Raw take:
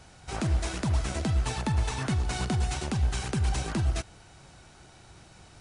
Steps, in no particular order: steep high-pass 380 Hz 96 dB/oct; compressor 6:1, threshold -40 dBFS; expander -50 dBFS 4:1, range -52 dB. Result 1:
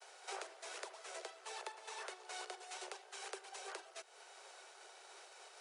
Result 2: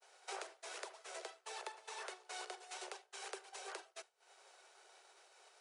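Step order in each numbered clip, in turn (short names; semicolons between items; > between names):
expander > compressor > steep high-pass; compressor > steep high-pass > expander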